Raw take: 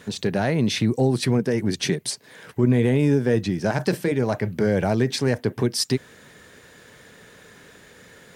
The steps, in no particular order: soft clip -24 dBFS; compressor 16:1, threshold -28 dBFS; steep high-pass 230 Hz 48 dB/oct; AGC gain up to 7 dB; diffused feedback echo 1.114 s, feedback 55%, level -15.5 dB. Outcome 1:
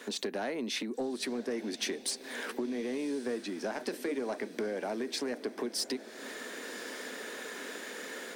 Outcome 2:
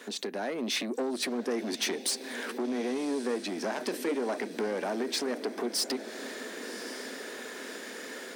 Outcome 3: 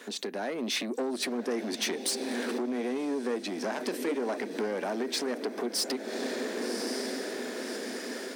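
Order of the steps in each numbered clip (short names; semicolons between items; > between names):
AGC > compressor > steep high-pass > soft clip > diffused feedback echo; compressor > AGC > diffused feedback echo > soft clip > steep high-pass; diffused feedback echo > compressor > AGC > soft clip > steep high-pass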